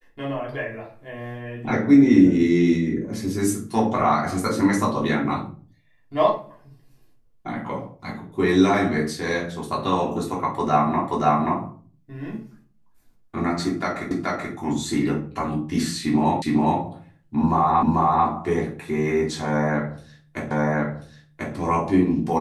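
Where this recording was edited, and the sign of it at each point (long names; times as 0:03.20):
0:11.08: the same again, the last 0.53 s
0:14.11: the same again, the last 0.43 s
0:16.42: the same again, the last 0.41 s
0:17.83: the same again, the last 0.44 s
0:20.51: the same again, the last 1.04 s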